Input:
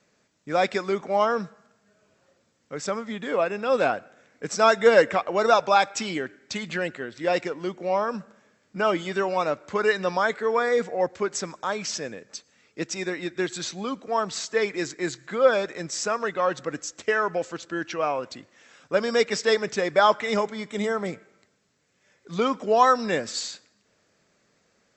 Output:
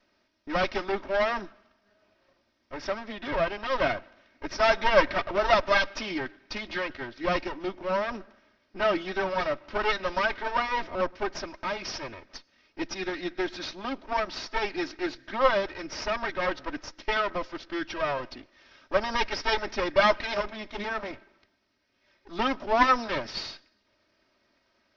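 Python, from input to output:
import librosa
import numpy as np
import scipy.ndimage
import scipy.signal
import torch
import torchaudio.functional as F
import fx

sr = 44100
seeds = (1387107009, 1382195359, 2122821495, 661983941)

y = fx.lower_of_two(x, sr, delay_ms=3.2)
y = scipy.signal.sosfilt(scipy.signal.ellip(4, 1.0, 40, 5400.0, 'lowpass', fs=sr, output='sos'), y)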